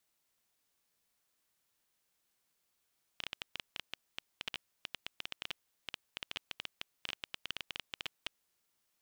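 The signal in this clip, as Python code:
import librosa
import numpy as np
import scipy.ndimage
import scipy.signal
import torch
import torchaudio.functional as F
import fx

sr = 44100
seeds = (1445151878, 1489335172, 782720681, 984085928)

y = fx.geiger_clicks(sr, seeds[0], length_s=5.14, per_s=11.0, level_db=-20.5)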